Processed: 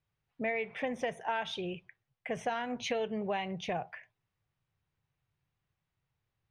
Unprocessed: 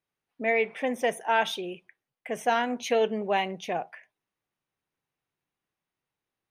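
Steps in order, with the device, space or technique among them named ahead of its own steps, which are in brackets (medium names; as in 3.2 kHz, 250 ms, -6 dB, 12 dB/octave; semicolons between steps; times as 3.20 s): jukebox (low-pass 5.1 kHz 12 dB/octave; resonant low shelf 170 Hz +13 dB, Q 1.5; compression 5:1, threshold -31 dBFS, peak gain reduction 11 dB)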